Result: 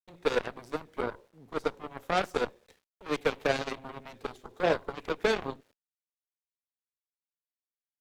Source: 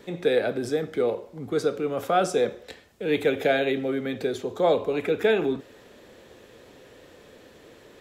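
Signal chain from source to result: gate with hold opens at -38 dBFS; small samples zeroed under -47 dBFS; Chebyshev shaper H 6 -22 dB, 7 -15 dB, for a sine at -8.5 dBFS; trim -5 dB

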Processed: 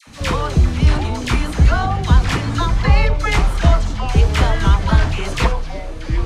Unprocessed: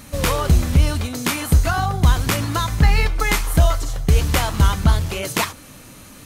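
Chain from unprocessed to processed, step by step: distance through air 86 m; band-stop 570 Hz, Q 12; phase dispersion lows, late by 75 ms, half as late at 960 Hz; ever faster or slower copies 549 ms, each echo -5 st, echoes 3, each echo -6 dB; trim +1.5 dB

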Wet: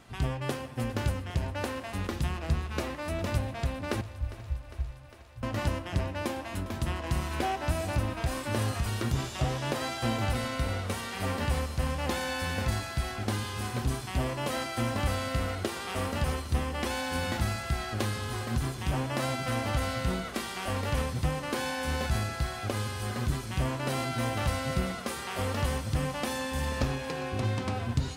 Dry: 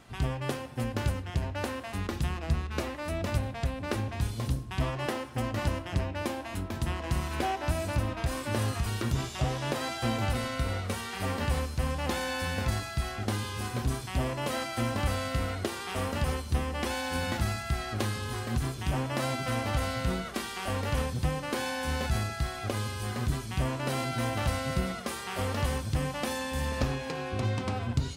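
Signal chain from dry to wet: 4.01–5.43 s: inverse Chebyshev band-stop 490–6800 Hz, stop band 80 dB; thinning echo 404 ms, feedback 77%, high-pass 200 Hz, level -16 dB

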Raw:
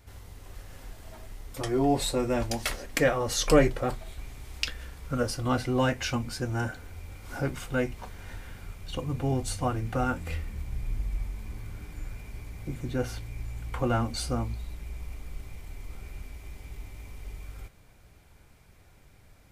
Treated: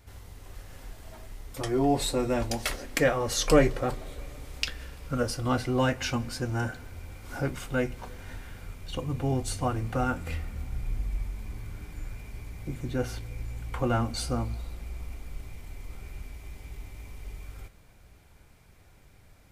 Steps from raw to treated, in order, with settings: on a send: reverberation RT60 4.3 s, pre-delay 42 ms, DRR 21 dB

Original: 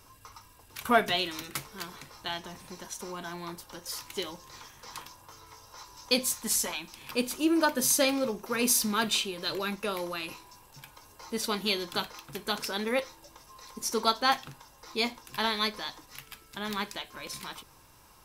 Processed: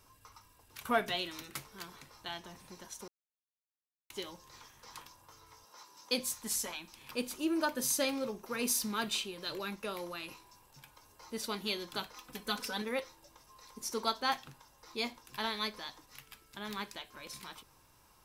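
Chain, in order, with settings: 3.08–4.10 s: mute; 5.64–6.20 s: high-pass 170 Hz 24 dB/octave; 12.16–12.82 s: comb 4 ms, depth 87%; trim -7 dB

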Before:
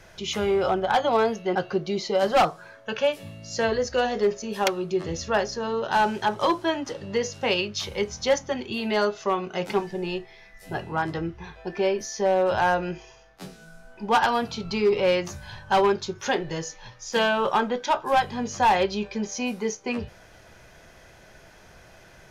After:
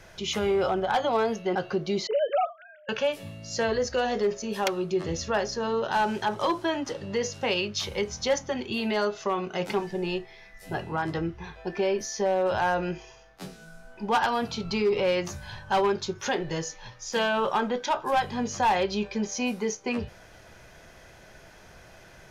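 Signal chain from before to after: 2.07–2.89 s: formants replaced by sine waves; peak limiter -18 dBFS, peak gain reduction 9 dB

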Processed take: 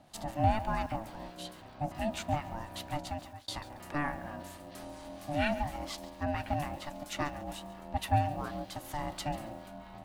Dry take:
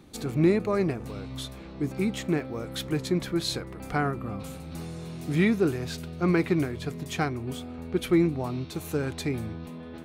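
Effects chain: high-pass 190 Hz 6 dB/octave; 5.53–6.53 s: compression, threshold -25 dBFS, peak gain reduction 6 dB; harmonic tremolo 4.3 Hz, depth 50%, crossover 560 Hz; 0.86–1.63 s: phase dispersion lows, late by 59 ms, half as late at 1.1 kHz; ring modulator 440 Hz; 2.99–3.48 s: fade out; bit-crushed delay 139 ms, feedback 35%, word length 8-bit, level -15 dB

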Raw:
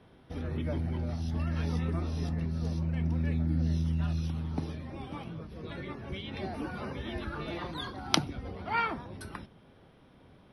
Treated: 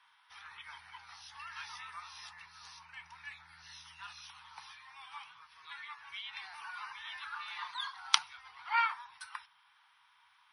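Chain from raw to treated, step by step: elliptic high-pass 930 Hz, stop band 40 dB; trim +1.5 dB; MP3 40 kbps 24 kHz

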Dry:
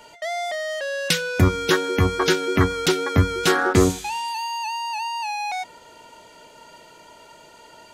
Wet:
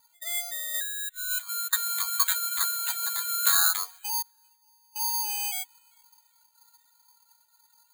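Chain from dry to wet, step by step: coarse spectral quantiser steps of 15 dB; 4.22–4.96 s: expander -14 dBFS; inverse Chebyshev high-pass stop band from 270 Hz, stop band 60 dB; treble shelf 3.1 kHz -6 dB; 0.74–1.73 s: compressor with a negative ratio -34 dBFS, ratio -0.5; 2.74–3.28 s: comb 1.2 ms, depth 37%; on a send: feedback echo behind a high-pass 396 ms, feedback 33%, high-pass 1.9 kHz, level -20 dB; on the sum: careless resampling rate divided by 8×, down filtered, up zero stuff; spectral contrast expander 1.5:1; trim -7.5 dB

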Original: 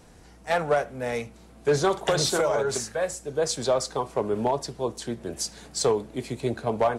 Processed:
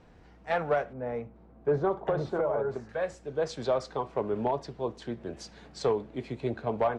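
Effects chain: low-pass 3 kHz 12 dB/octave, from 0.93 s 1.1 kHz, from 2.89 s 3.1 kHz; trim -4 dB

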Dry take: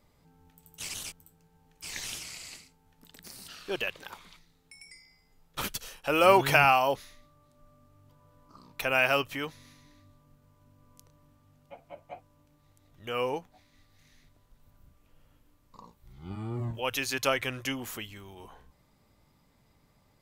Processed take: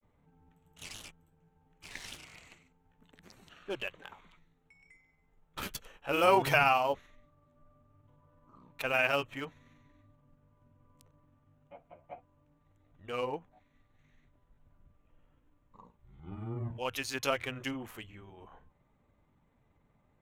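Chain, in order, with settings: local Wiener filter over 9 samples; granulator 100 ms, grains 21 per s, spray 17 ms, pitch spread up and down by 0 st; trim -2.5 dB

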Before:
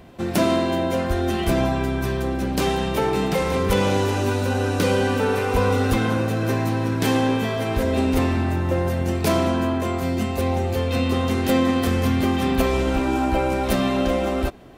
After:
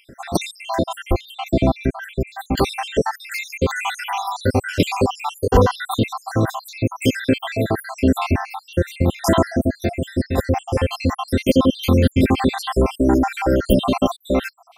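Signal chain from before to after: random holes in the spectrogram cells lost 76%; 1.21–2.24 s: treble shelf 3.1 kHz -10.5 dB; 9.47–10.35 s: elliptic band-stop 680–1600 Hz, stop band 40 dB; trim +7.5 dB

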